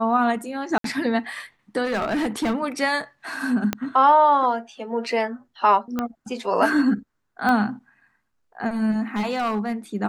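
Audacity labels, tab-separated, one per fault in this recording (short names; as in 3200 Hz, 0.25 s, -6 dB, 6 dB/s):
0.780000	0.840000	gap 63 ms
1.840000	2.550000	clipped -19.5 dBFS
3.730000	3.730000	pop -9 dBFS
5.990000	5.990000	pop -12 dBFS
7.490000	7.490000	pop -12 dBFS
9.150000	9.730000	clipped -20 dBFS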